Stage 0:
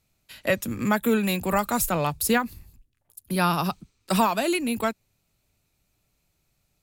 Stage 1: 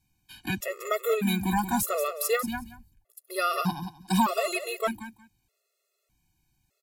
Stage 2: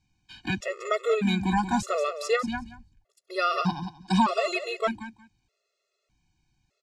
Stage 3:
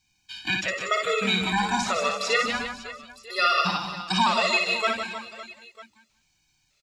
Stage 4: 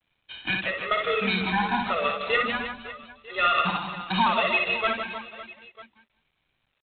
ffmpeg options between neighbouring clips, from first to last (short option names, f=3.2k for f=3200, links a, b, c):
-filter_complex "[0:a]asplit=2[a][b];[b]aecho=0:1:181|362:0.316|0.0506[c];[a][c]amix=inputs=2:normalize=0,afftfilt=real='re*gt(sin(2*PI*0.82*pts/sr)*(1-2*mod(floor(b*sr/1024/360),2)),0)':imag='im*gt(sin(2*PI*0.82*pts/sr)*(1-2*mod(floor(b*sr/1024/360),2)),0)':win_size=1024:overlap=0.75"
-af "lowpass=f=6.5k:w=0.5412,lowpass=f=6.5k:w=1.3066,volume=1.5dB"
-filter_complex "[0:a]acrossover=split=6200[a][b];[b]acompressor=threshold=-58dB:ratio=4:attack=1:release=60[c];[a][c]amix=inputs=2:normalize=0,tiltshelf=f=1.1k:g=-8.5,asplit=2[d][e];[e]aecho=0:1:60|156|309.6|555.4|948.6:0.631|0.398|0.251|0.158|0.1[f];[d][f]amix=inputs=2:normalize=0,volume=1.5dB"
-ar 8000 -c:a adpcm_g726 -b:a 24k